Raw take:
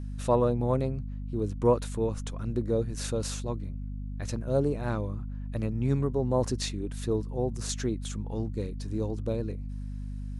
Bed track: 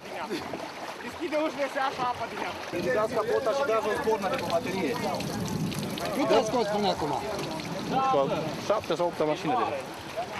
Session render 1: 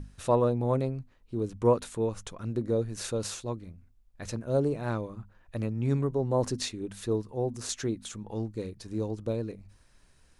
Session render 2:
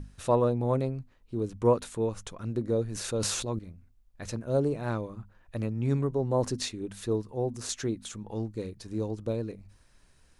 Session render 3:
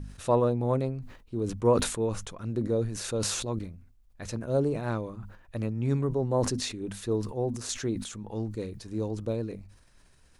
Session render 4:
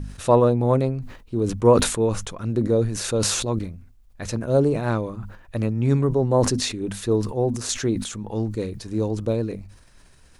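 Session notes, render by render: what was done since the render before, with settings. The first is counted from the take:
mains-hum notches 50/100/150/200/250 Hz
0:02.84–0:03.59: level that may fall only so fast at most 26 dB per second
level that may fall only so fast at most 80 dB per second
level +7.5 dB

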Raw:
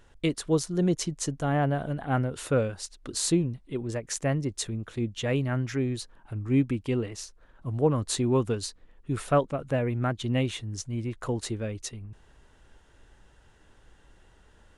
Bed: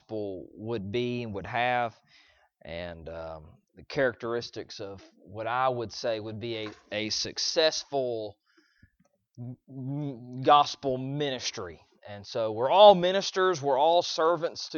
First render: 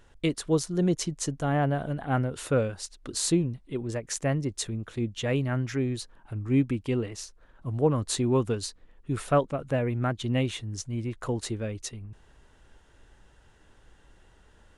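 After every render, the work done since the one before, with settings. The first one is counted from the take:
no processing that can be heard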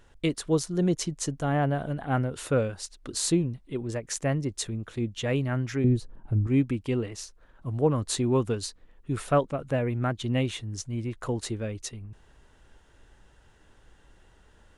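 0:05.84–0:06.47: tilt shelving filter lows +10 dB, about 750 Hz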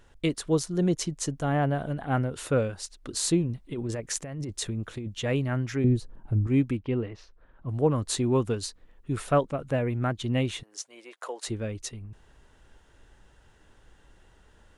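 0:03.49–0:05.15: compressor whose output falls as the input rises −32 dBFS
0:06.77–0:07.69: high-frequency loss of the air 300 metres
0:10.63–0:11.48: high-pass filter 490 Hz 24 dB per octave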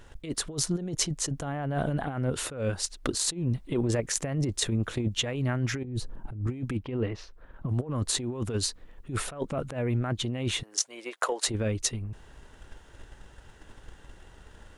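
transient designer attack +8 dB, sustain +1 dB
compressor whose output falls as the input rises −30 dBFS, ratio −1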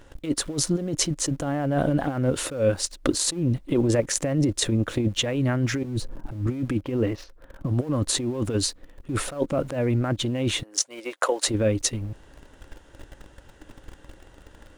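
in parallel at −6 dB: centre clipping without the shift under −40.5 dBFS
on the sum: hollow resonant body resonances 300/540 Hz, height 8 dB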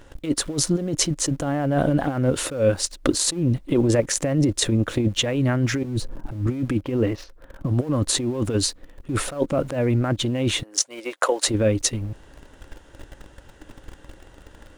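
level +2.5 dB
brickwall limiter −3 dBFS, peak gain reduction 2 dB

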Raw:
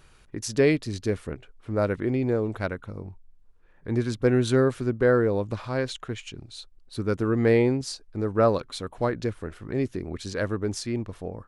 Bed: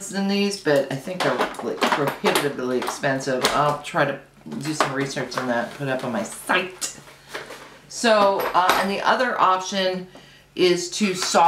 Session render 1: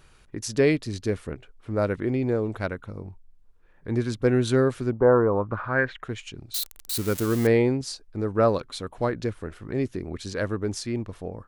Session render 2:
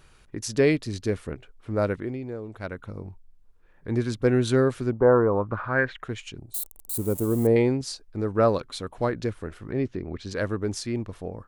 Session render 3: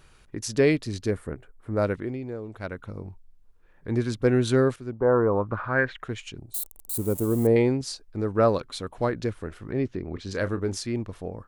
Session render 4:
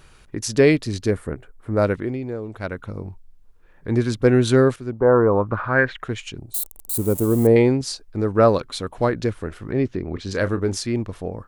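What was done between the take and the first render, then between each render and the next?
0:04.91–0:06.02: low-pass with resonance 820 Hz → 2,000 Hz; 0:06.54–0:07.47: spike at every zero crossing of −21 dBFS
0:01.90–0:02.83: duck −10 dB, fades 0.41 s quadratic; 0:06.38–0:07.56: flat-topped bell 2,800 Hz −16 dB 2.5 octaves; 0:09.72–0:10.31: high-frequency loss of the air 140 metres
0:01.11–0:01.77: flat-topped bell 3,900 Hz −9.5 dB; 0:04.76–0:05.30: fade in linear, from −13 dB; 0:10.12–0:10.82: double-tracking delay 31 ms −12 dB
level +5.5 dB

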